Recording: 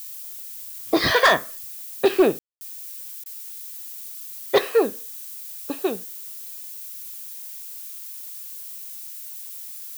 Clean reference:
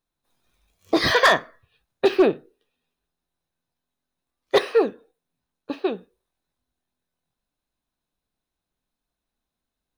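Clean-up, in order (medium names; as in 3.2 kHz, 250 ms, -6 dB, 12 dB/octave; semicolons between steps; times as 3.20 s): room tone fill 2.39–2.61 s; interpolate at 3.24 s, 18 ms; noise print and reduce 30 dB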